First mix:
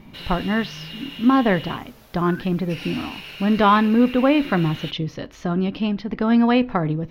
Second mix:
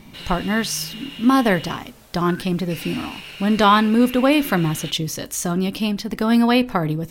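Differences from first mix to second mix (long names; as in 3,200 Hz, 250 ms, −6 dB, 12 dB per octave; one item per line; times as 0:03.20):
speech: remove high-frequency loss of the air 270 metres
master: add parametric band 8,300 Hz +10.5 dB 0.53 octaves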